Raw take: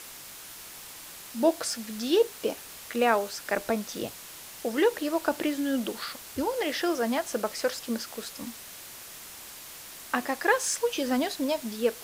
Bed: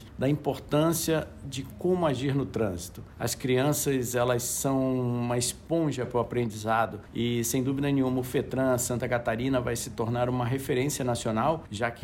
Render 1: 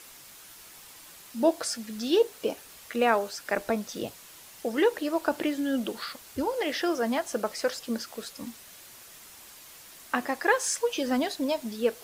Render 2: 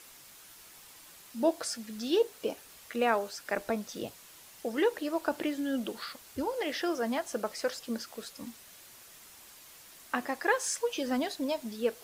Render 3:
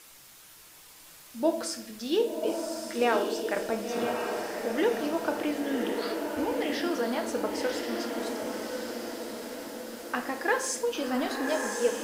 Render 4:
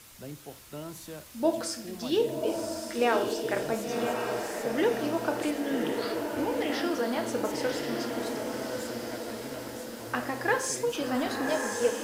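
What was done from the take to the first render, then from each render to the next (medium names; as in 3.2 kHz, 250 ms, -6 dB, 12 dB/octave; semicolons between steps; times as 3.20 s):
noise reduction 6 dB, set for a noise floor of -45 dBFS
trim -4 dB
echo that smears into a reverb 1100 ms, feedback 54%, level -3.5 dB; simulated room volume 160 m³, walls mixed, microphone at 0.51 m
add bed -16.5 dB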